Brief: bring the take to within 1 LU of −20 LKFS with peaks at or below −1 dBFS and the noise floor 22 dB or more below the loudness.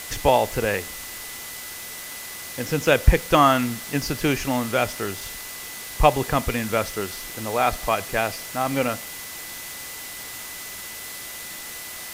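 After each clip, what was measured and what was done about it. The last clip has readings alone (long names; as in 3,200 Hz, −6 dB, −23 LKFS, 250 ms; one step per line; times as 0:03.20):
interfering tone 2,000 Hz; level of the tone −42 dBFS; background noise floor −36 dBFS; target noise floor −47 dBFS; integrated loudness −24.5 LKFS; sample peak −1.5 dBFS; target loudness −20.0 LKFS
→ notch filter 2,000 Hz, Q 30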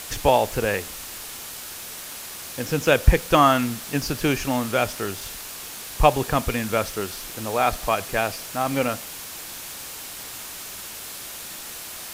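interfering tone none found; background noise floor −37 dBFS; target noise floor −47 dBFS
→ broadband denoise 10 dB, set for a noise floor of −37 dBFS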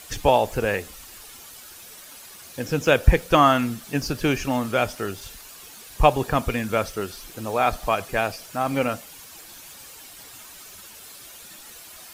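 background noise floor −44 dBFS; target noise floor −45 dBFS
→ broadband denoise 6 dB, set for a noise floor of −44 dBFS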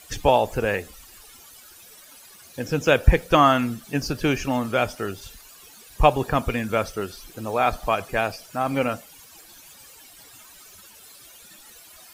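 background noise floor −48 dBFS; integrated loudness −23.0 LKFS; sample peak −1.5 dBFS; target loudness −20.0 LKFS
→ level +3 dB
brickwall limiter −1 dBFS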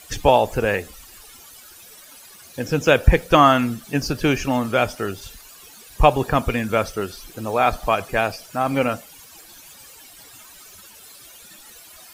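integrated loudness −20.5 LKFS; sample peak −1.0 dBFS; background noise floor −45 dBFS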